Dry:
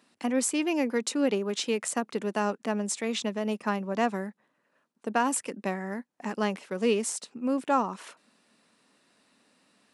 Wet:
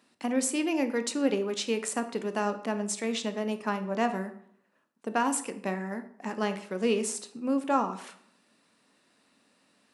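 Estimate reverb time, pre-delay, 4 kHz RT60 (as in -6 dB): 0.65 s, 16 ms, 0.45 s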